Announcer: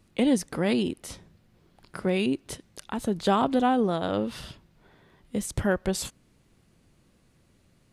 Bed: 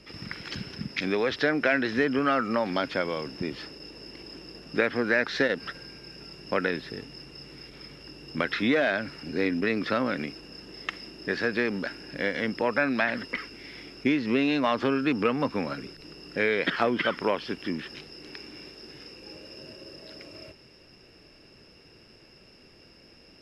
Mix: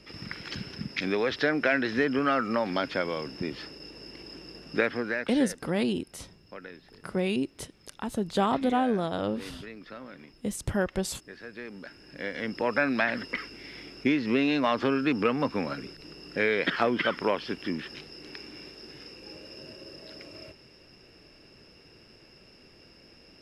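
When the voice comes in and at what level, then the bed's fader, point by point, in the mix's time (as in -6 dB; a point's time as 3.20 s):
5.10 s, -2.5 dB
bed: 4.85 s -1 dB
5.64 s -17 dB
11.40 s -17 dB
12.74 s -0.5 dB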